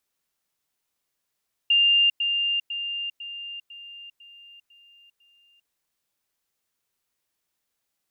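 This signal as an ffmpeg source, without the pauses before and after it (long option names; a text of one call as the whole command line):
ffmpeg -f lavfi -i "aevalsrc='pow(10,(-15.5-6*floor(t/0.5))/20)*sin(2*PI*2800*t)*clip(min(mod(t,0.5),0.4-mod(t,0.5))/0.005,0,1)':duration=4:sample_rate=44100" out.wav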